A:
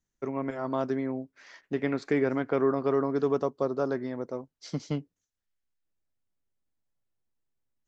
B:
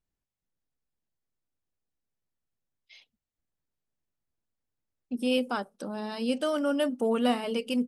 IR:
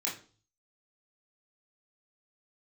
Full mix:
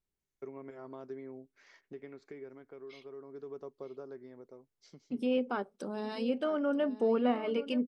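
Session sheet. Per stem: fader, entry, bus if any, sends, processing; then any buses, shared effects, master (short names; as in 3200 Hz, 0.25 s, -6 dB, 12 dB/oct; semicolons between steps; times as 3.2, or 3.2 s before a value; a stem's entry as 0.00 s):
-9.5 dB, 0.20 s, no send, no echo send, compressor 2.5:1, threshold -39 dBFS, peak gain reduction 13 dB; auto duck -8 dB, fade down 1.35 s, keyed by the second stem
-4.0 dB, 0.00 s, no send, echo send -15 dB, treble ducked by the level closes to 1900 Hz, closed at -24 dBFS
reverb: off
echo: echo 0.928 s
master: small resonant body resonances 400/2200 Hz, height 8 dB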